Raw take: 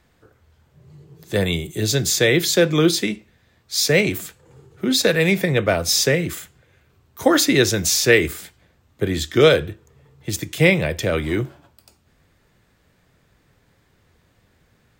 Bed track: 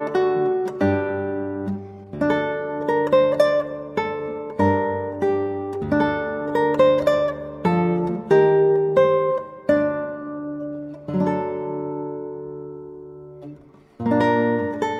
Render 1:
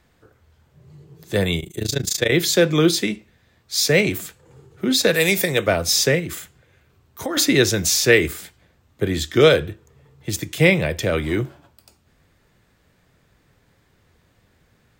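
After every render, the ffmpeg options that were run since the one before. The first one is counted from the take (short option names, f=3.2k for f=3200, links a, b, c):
-filter_complex "[0:a]asettb=1/sr,asplit=3[a][b][c];[a]atrim=end=1.604[d];[b]atrim=start=1.6:end=2.32,asetpts=PTS-STARTPTS,afade=t=in:d=0.004:c=qsin,afade=t=out:st=0.716:d=0.004:c=qsin,tremolo=f=27:d=0.919[e];[c]atrim=start=2.316[f];[d][e]acrossfade=d=0.004:c1=hsin:c2=qsin[g];[g][f]acrossfade=d=0.004:c1=qsin:c2=hsin,asplit=3[h][i][j];[h]afade=t=out:st=5.13:d=0.02[k];[i]bass=f=250:g=-7,treble=f=4k:g=13,afade=t=in:st=5.13:d=0.02,afade=t=out:st=5.66:d=0.02[l];[j]afade=t=in:st=5.66:d=0.02[m];[k][l][m]amix=inputs=3:normalize=0,asettb=1/sr,asplit=3[n][o][p];[n]atrim=end=6.194[q];[o]atrim=start=6.19:end=7.37,asetpts=PTS-STARTPTS,afade=t=in:d=0.004:c=qsin,afade=t=out:st=1.176:d=0.004:c=qsin,acompressor=threshold=-25dB:ratio=3:attack=3.2:release=140:knee=1:detection=peak[r];[p]atrim=start=7.366[s];[q][r]acrossfade=d=0.004:c1=hsin:c2=qsin[t];[t][s]acrossfade=d=0.004:c1=qsin:c2=hsin"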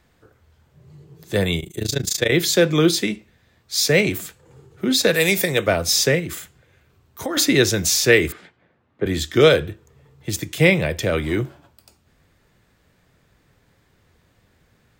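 -filter_complex "[0:a]asettb=1/sr,asplit=3[a][b][c];[a]atrim=end=8.324[d];[b]atrim=start=8.32:end=9.06,asetpts=PTS-STARTPTS,afade=t=in:d=0.004:c=qsin,afade=t=out:st=0.736:d=0.004:c=qsin,highpass=160,lowpass=2.2k[e];[c]atrim=start=9.056[f];[d][e]acrossfade=d=0.004:c1=hsin:c2=qsin[g];[g][f]acrossfade=d=0.004:c1=qsin:c2=hsin"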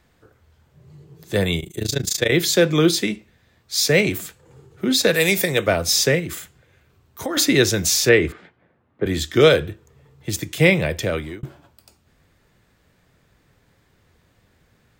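-filter_complex "[0:a]asettb=1/sr,asplit=3[a][b][c];[a]atrim=end=8.094[d];[b]atrim=start=8.09:end=9.03,asetpts=PTS-STARTPTS,afade=t=in:d=0.004:c=qsin,afade=t=out:st=0.936:d=0.004:c=qsin,aemphasis=mode=reproduction:type=75fm[e];[c]atrim=start=9.026[f];[d][e]acrossfade=d=0.004:c1=hsin:c2=qsin[g];[g][f]acrossfade=d=0.004:c1=qsin:c2=hsin,asplit=2[h][i];[h]atrim=end=11.43,asetpts=PTS-STARTPTS,afade=t=out:st=10.87:d=0.56:c=qsin[j];[i]atrim=start=11.43,asetpts=PTS-STARTPTS,afade=t=in:d=0.004:c=hsin[k];[j][k]concat=n=2:v=0:a=1"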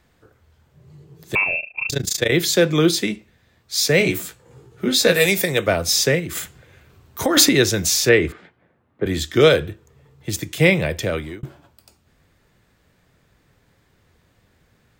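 -filter_complex "[0:a]asettb=1/sr,asplit=3[a][b][c];[a]atrim=end=1.354[d];[b]atrim=start=1.35:end=1.9,asetpts=PTS-STARTPTS,afade=t=in:d=0.004:c=qsin,afade=t=out:st=0.546:d=0.004:c=qsin,lowpass=f=2.4k:t=q:w=0.5098,lowpass=f=2.4k:t=q:w=0.6013,lowpass=f=2.4k:t=q:w=0.9,lowpass=f=2.4k:t=q:w=2.563,afreqshift=-2800[e];[c]atrim=start=1.896[f];[d][e]acrossfade=d=0.004:c1=hsin:c2=qsin[g];[g][f]acrossfade=d=0.004:c1=qsin:c2=hsin,asettb=1/sr,asplit=3[h][i][j];[h]atrim=end=3.994[k];[i]atrim=start=3.99:end=5.26,asetpts=PTS-STARTPTS,afade=t=in:d=0.004:c=qsin,afade=t=out:st=1.266:d=0.004:c=qsin,asplit=2[l][m];[m]adelay=17,volume=-3dB[n];[l][n]amix=inputs=2:normalize=0,atrim=end_sample=56007[o];[j]atrim=start=5.256[p];[k][o]acrossfade=d=0.004:c1=hsin:c2=qsin[q];[q][p]acrossfade=d=0.004:c1=qsin:c2=hsin,asettb=1/sr,asplit=3[r][s][t];[r]atrim=end=6.354[u];[s]atrim=start=6.35:end=7.49,asetpts=PTS-STARTPTS,afade=t=in:d=0.004:c=qsin,afade=t=out:st=1.136:d=0.004:c=qsin,acontrast=85[v];[t]atrim=start=7.486[w];[u][v]acrossfade=d=0.004:c1=hsin:c2=qsin[x];[x][w]acrossfade=d=0.004:c1=qsin:c2=hsin"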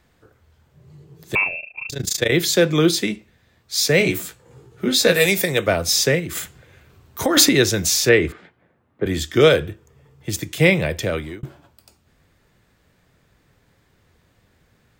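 -filter_complex "[0:a]asplit=3[a][b][c];[a]afade=t=out:st=1.47:d=0.02[d];[b]acompressor=threshold=-31dB:ratio=2:attack=3.2:release=140:knee=1:detection=peak,afade=t=in:st=1.47:d=0.02,afade=t=out:st=1.97:d=0.02[e];[c]afade=t=in:st=1.97:d=0.02[f];[d][e][f]amix=inputs=3:normalize=0,asettb=1/sr,asplit=3[g][h][i];[g]atrim=end=9.084[j];[h]atrim=start=9.08:end=10.34,asetpts=PTS-STARTPTS,afade=t=in:d=0.004:c=qsin,afade=t=out:st=1.256:d=0.004:c=qsin,bandreject=f=4k:w=12[k];[i]atrim=start=10.336[l];[j][k]acrossfade=d=0.004:c1=hsin:c2=qsin[m];[m][l]acrossfade=d=0.004:c1=qsin:c2=hsin"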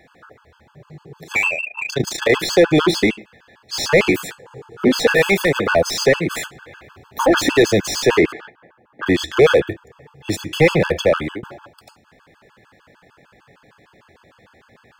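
-filter_complex "[0:a]asplit=2[a][b];[b]highpass=f=720:p=1,volume=26dB,asoftclip=type=tanh:threshold=-1dB[c];[a][c]amix=inputs=2:normalize=0,lowpass=f=1.2k:p=1,volume=-6dB,afftfilt=real='re*gt(sin(2*PI*6.6*pts/sr)*(1-2*mod(floor(b*sr/1024/860),2)),0)':imag='im*gt(sin(2*PI*6.6*pts/sr)*(1-2*mod(floor(b*sr/1024/860),2)),0)':win_size=1024:overlap=0.75"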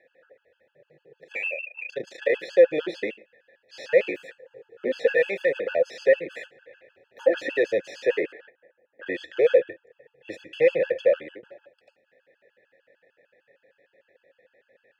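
-filter_complex "[0:a]asplit=3[a][b][c];[a]bandpass=f=530:t=q:w=8,volume=0dB[d];[b]bandpass=f=1.84k:t=q:w=8,volume=-6dB[e];[c]bandpass=f=2.48k:t=q:w=8,volume=-9dB[f];[d][e][f]amix=inputs=3:normalize=0"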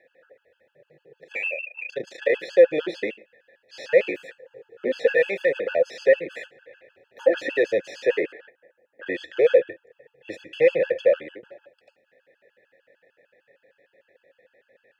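-af "volume=1.5dB"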